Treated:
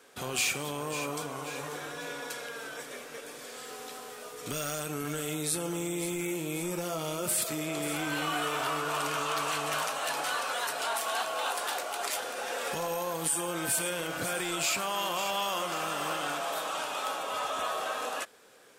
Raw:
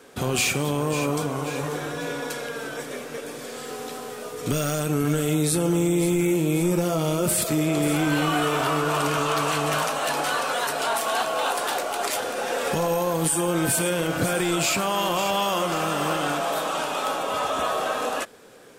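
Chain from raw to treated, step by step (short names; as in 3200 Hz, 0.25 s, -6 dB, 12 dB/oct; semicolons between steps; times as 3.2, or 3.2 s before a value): low shelf 470 Hz -11 dB; gain -5 dB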